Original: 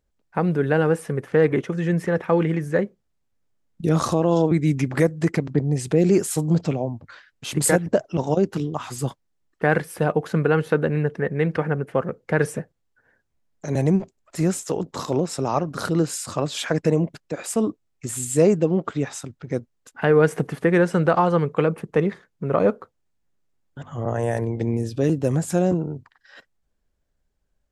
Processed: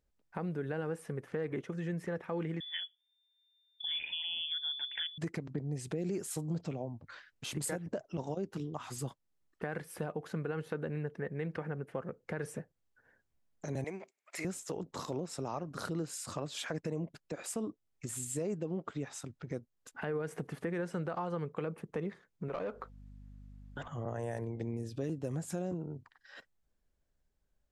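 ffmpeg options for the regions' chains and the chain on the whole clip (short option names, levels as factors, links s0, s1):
-filter_complex "[0:a]asettb=1/sr,asplit=3[s0][s1][s2];[s0]atrim=end=2.604[s3];[s1]atrim=start=2.6:end=5.18,asetpts=PTS-STARTPTS,afade=t=in:d=0.004:c=qsin,afade=t=out:st=2.576:d=0.004:c=qsin,equalizer=f=450:w=0.83:g=-10.5,lowpass=f=3100:t=q:w=0.5098,lowpass=f=3100:t=q:w=0.6013,lowpass=f=3100:t=q:w=0.9,lowpass=f=3100:t=q:w=2.563,afreqshift=-3600,asuperstop=centerf=1200:order=8:qfactor=3.1[s4];[s2]atrim=start=5.176[s5];[s3][s4]acrossfade=d=0.004:c1=hsin:c2=qsin[s6];[s6][s5]acrossfade=d=0.004:c1=qsin:c2=hsin,asettb=1/sr,asplit=3[s7][s8][s9];[s7]atrim=end=13.844[s10];[s8]atrim=start=13.84:end=14.45,asetpts=PTS-STARTPTS,afade=t=in:d=0.004:c=qsin,afade=t=out:st=0.606:d=0.004:c=qsin,highpass=480,equalizer=f=2200:t=o:w=0.39:g=14[s11];[s9]atrim=start=14.446[s12];[s10][s11]acrossfade=d=0.004:c1=hsin:c2=qsin[s13];[s13][s12]acrossfade=d=0.004:c1=qsin:c2=hsin,asettb=1/sr,asplit=3[s14][s15][s16];[s14]atrim=end=22.484[s17];[s15]atrim=start=22.48:end=23.88,asetpts=PTS-STARTPTS,afade=t=in:d=0.004:c=qsin,afade=t=out:st=1.396:d=0.004:c=qsin,asplit=2[s18][s19];[s19]highpass=f=720:p=1,volume=7.08,asoftclip=type=tanh:threshold=0.473[s20];[s18][s20]amix=inputs=2:normalize=0,lowpass=f=4400:p=1,volume=0.501,aeval=exprs='val(0)+0.00562*(sin(2*PI*50*n/s)+sin(2*PI*2*50*n/s)/2+sin(2*PI*3*50*n/s)/3+sin(2*PI*4*50*n/s)/4+sin(2*PI*5*50*n/s)/5)':c=same,acompressor=threshold=0.0398:ratio=2:attack=3.2:release=140:knee=1:detection=peak[s21];[s16]atrim=start=23.876[s22];[s17][s21]acrossfade=d=0.004:c1=hsin:c2=qsin[s23];[s23][s22]acrossfade=d=0.004:c1=qsin:c2=hsin,alimiter=limit=0.282:level=0:latency=1,acompressor=threshold=0.0158:ratio=2,volume=0.531"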